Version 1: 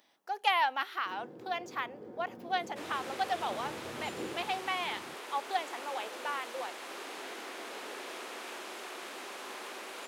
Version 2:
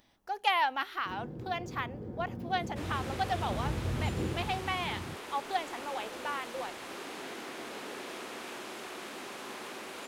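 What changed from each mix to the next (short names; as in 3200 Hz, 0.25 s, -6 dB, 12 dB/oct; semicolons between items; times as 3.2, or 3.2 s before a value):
master: remove HPF 360 Hz 12 dB/oct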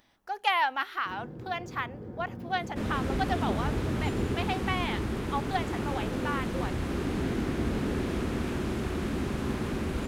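second sound: remove HPF 720 Hz 12 dB/oct; master: add bell 1500 Hz +4 dB 1.2 oct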